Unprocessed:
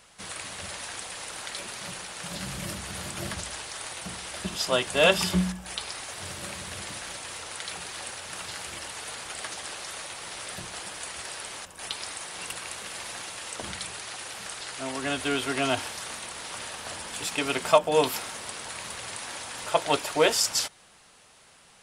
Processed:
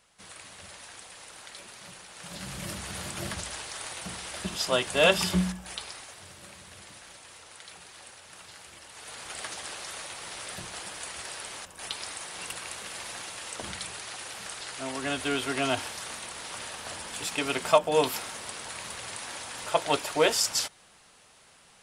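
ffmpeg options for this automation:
ffmpeg -i in.wav -af "volume=8.5dB,afade=type=in:start_time=2.06:duration=0.76:silence=0.398107,afade=type=out:start_time=5.47:duration=0.79:silence=0.316228,afade=type=in:start_time=8.88:duration=0.49:silence=0.334965" out.wav

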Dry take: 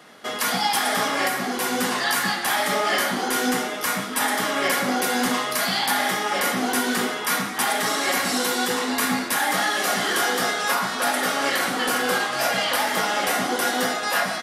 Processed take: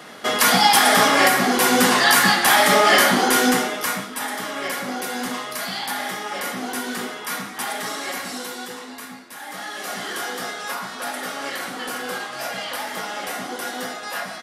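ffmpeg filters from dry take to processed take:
ffmpeg -i in.wav -af "volume=19dB,afade=type=out:start_time=3.15:duration=1:silence=0.237137,afade=type=out:start_time=7.86:duration=1.4:silence=0.223872,afade=type=in:start_time=9.26:duration=0.73:silence=0.266073" out.wav

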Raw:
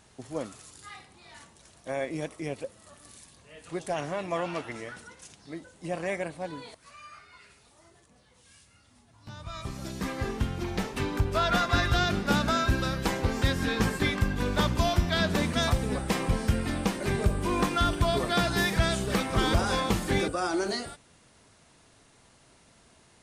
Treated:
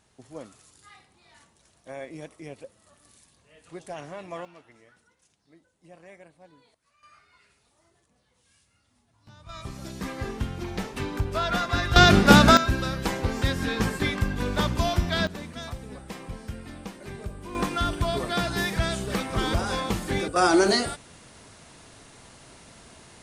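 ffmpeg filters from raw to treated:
ffmpeg -i in.wav -af "asetnsamples=nb_out_samples=441:pad=0,asendcmd='4.45 volume volume -17.5dB;7.03 volume volume -7.5dB;9.49 volume volume -1dB;11.96 volume volume 11.5dB;12.57 volume volume 0.5dB;15.27 volume volume -11dB;17.55 volume volume -1dB;20.36 volume volume 9.5dB',volume=-6.5dB" out.wav

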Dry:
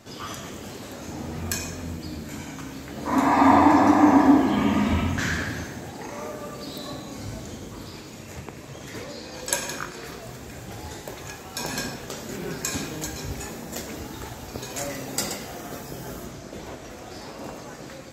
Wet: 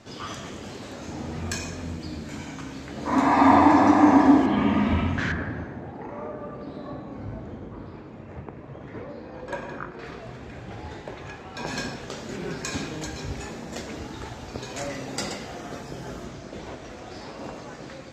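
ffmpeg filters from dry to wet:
ffmpeg -i in.wav -af "asetnsamples=nb_out_samples=441:pad=0,asendcmd='4.46 lowpass f 3200;5.32 lowpass f 1400;9.99 lowpass f 3000;11.67 lowpass f 5300',lowpass=6200" out.wav

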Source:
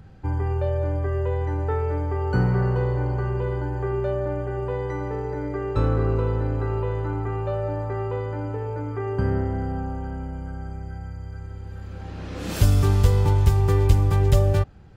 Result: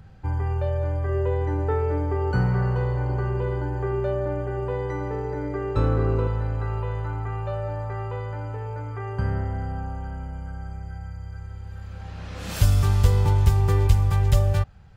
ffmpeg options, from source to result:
ffmpeg -i in.wav -af "asetnsamples=nb_out_samples=441:pad=0,asendcmd='1.09 equalizer g 3;2.31 equalizer g -6.5;3.09 equalizer g -0.5;6.27 equalizer g -11.5;13.04 equalizer g -5;13.87 equalizer g -13',equalizer=frequency=320:width_type=o:width=1.1:gain=-6.5" out.wav

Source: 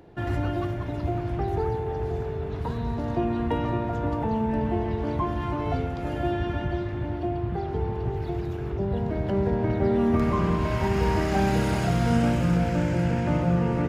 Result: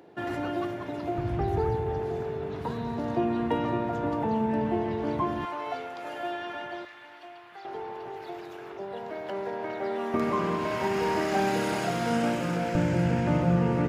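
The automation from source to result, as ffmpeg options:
ffmpeg -i in.wav -af "asetnsamples=nb_out_samples=441:pad=0,asendcmd='1.18 highpass f 58;2 highpass f 160;5.45 highpass f 630;6.85 highpass f 1400;7.65 highpass f 580;10.14 highpass f 270;12.75 highpass f 100',highpass=240" out.wav

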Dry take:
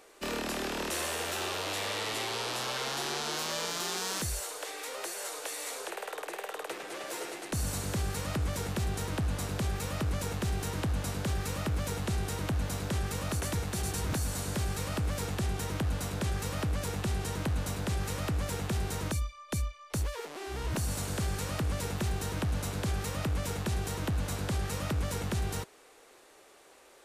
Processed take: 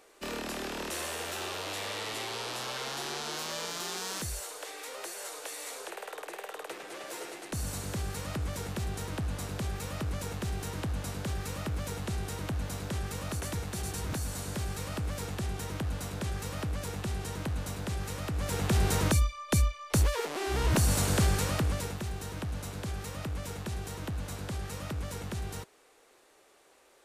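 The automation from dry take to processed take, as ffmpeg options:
ffmpeg -i in.wav -af "volume=7dB,afade=type=in:start_time=18.33:duration=0.54:silence=0.334965,afade=type=out:start_time=21.21:duration=0.79:silence=0.266073" out.wav

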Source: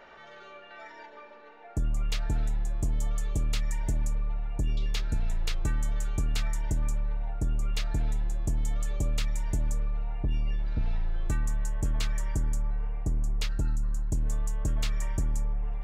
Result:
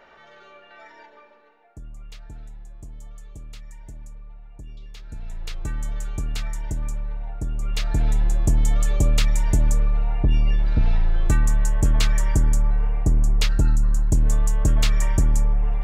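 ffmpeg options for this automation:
ffmpeg -i in.wav -af "volume=21.5dB,afade=type=out:start_time=1:duration=0.74:silence=0.266073,afade=type=in:start_time=4.97:duration=0.88:silence=0.237137,afade=type=in:start_time=7.54:duration=0.73:silence=0.354813" out.wav

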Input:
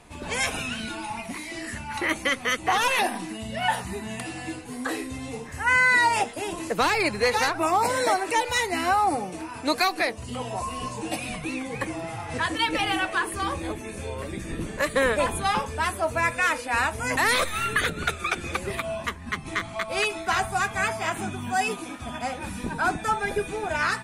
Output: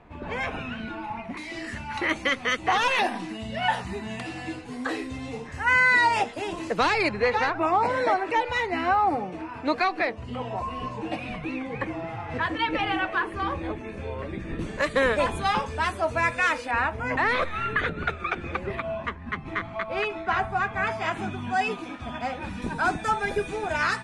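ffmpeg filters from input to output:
ffmpeg -i in.wav -af "asetnsamples=nb_out_samples=441:pad=0,asendcmd='1.37 lowpass f 5100;7.09 lowpass f 2600;14.59 lowpass f 5600;16.71 lowpass f 2200;20.87 lowpass f 3900;22.62 lowpass f 7100',lowpass=1900" out.wav

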